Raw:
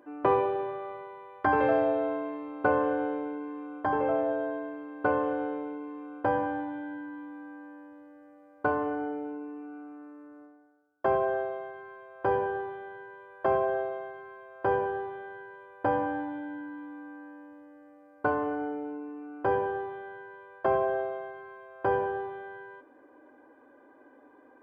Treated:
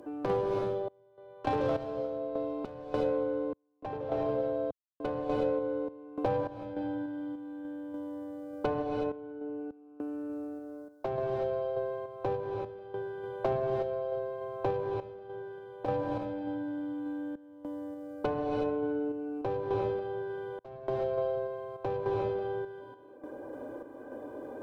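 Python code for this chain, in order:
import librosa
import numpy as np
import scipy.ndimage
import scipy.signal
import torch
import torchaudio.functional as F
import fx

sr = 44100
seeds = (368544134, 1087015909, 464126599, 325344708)

y = fx.tracing_dist(x, sr, depth_ms=0.25)
y = fx.clip_asym(y, sr, top_db=-19.0, bottom_db=-14.0)
y = fx.graphic_eq_10(y, sr, hz=(125, 250, 500, 1000, 2000), db=(9, -3, 4, -4, -12))
y = fx.rev_gated(y, sr, seeds[0], gate_ms=390, shape='rising', drr_db=2.0)
y = fx.tremolo_random(y, sr, seeds[1], hz=3.4, depth_pct=100)
y = fx.band_squash(y, sr, depth_pct=70)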